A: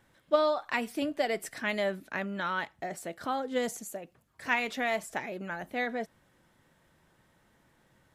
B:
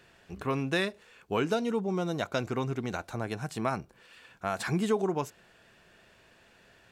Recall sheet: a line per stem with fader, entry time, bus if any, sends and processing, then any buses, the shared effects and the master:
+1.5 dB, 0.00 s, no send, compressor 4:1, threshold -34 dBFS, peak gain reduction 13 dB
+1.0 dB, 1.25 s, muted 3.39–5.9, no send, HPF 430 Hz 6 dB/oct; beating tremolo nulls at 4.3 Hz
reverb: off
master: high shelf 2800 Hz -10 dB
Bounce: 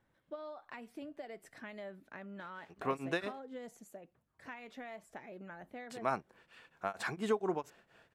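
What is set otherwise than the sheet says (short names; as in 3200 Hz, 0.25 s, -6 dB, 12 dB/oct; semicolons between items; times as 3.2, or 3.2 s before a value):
stem A +1.5 dB -> -9.0 dB; stem B: entry 1.25 s -> 2.40 s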